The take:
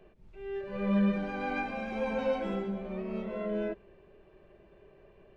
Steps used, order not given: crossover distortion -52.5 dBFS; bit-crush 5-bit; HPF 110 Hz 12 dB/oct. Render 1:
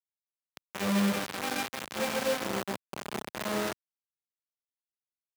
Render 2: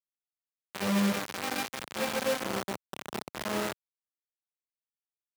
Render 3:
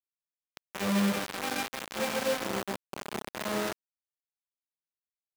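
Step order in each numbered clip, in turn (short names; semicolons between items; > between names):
bit-crush > crossover distortion > HPF; crossover distortion > bit-crush > HPF; bit-crush > HPF > crossover distortion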